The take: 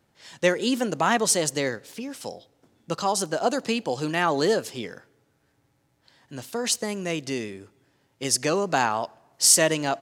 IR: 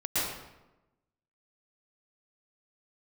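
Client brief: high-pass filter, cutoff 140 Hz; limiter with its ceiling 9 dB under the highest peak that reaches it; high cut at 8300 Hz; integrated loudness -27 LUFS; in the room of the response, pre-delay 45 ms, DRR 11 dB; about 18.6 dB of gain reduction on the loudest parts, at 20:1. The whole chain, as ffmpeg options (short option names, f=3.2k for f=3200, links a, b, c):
-filter_complex "[0:a]highpass=140,lowpass=8.3k,acompressor=threshold=-34dB:ratio=20,alimiter=level_in=6.5dB:limit=-24dB:level=0:latency=1,volume=-6.5dB,asplit=2[a][b];[1:a]atrim=start_sample=2205,adelay=45[c];[b][c]afir=irnorm=-1:irlink=0,volume=-20.5dB[d];[a][d]amix=inputs=2:normalize=0,volume=14.5dB"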